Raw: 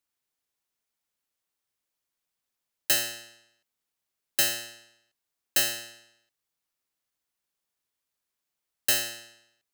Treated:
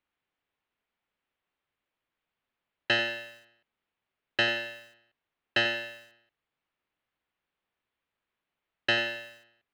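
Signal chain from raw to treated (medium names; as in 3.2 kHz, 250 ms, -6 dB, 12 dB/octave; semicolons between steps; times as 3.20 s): low-pass 3.1 kHz 24 dB/octave; bit-crushed delay 91 ms, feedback 35%, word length 9-bit, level -12 dB; trim +5.5 dB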